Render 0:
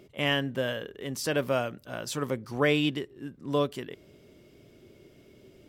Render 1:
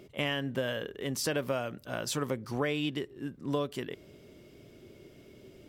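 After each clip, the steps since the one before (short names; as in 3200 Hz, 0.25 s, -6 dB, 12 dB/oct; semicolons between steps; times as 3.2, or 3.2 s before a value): compressor 6:1, threshold -29 dBFS, peak gain reduction 9.5 dB; gain +1.5 dB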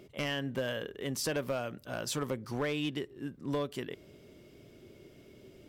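overloaded stage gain 24 dB; gain -1.5 dB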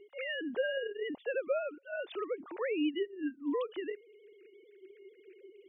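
sine-wave speech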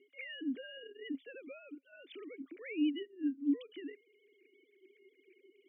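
vowel filter i; gain +6.5 dB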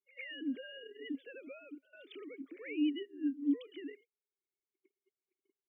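gate -58 dBFS, range -38 dB; pre-echo 0.103 s -19.5 dB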